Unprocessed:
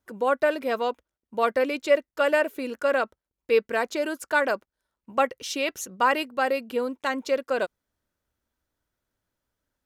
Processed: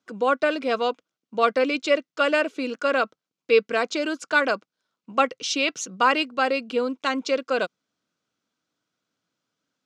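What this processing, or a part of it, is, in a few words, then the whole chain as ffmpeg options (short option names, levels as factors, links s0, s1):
television speaker: -af "highpass=f=160:w=0.5412,highpass=f=160:w=1.3066,equalizer=f=230:t=q:w=4:g=-4,equalizer=f=380:t=q:w=4:g=-7,equalizer=f=580:t=q:w=4:g=-7,equalizer=f=890:t=q:w=4:g=-9,equalizer=f=1800:t=q:w=4:g=-9,lowpass=f=6700:w=0.5412,lowpass=f=6700:w=1.3066,volume=2.24"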